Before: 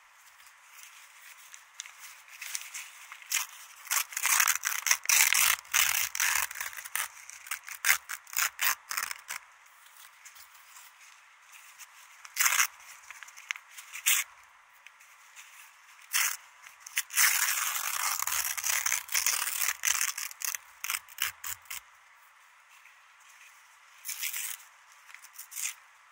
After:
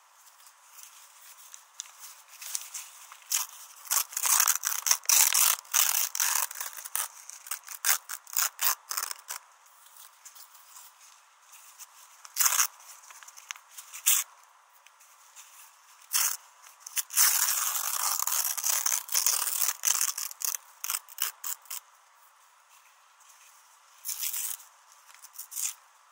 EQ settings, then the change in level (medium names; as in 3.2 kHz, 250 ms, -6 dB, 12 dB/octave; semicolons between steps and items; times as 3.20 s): steep high-pass 330 Hz 96 dB/octave; peaking EQ 2.1 kHz -14 dB 0.95 oct; +4.0 dB